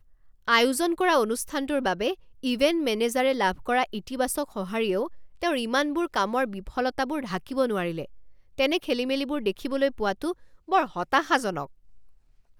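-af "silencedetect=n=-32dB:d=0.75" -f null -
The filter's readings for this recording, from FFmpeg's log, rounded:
silence_start: 11.64
silence_end: 12.59 | silence_duration: 0.95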